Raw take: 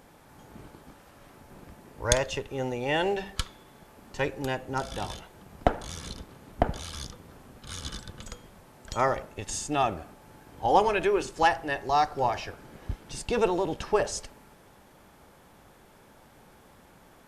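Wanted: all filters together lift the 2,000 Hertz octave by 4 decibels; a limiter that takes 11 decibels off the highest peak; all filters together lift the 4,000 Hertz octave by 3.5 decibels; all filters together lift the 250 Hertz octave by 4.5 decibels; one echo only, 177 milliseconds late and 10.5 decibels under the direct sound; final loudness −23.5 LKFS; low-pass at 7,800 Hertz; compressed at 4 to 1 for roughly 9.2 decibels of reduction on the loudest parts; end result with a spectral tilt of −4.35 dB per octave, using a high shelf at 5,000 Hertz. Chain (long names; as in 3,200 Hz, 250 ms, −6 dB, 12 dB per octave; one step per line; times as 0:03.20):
low-pass filter 7,800 Hz
parametric band 250 Hz +6 dB
parametric band 2,000 Hz +4.5 dB
parametric band 4,000 Hz +5.5 dB
high-shelf EQ 5,000 Hz −5.5 dB
downward compressor 4 to 1, threshold −26 dBFS
brickwall limiter −21.5 dBFS
single-tap delay 177 ms −10.5 dB
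level +11 dB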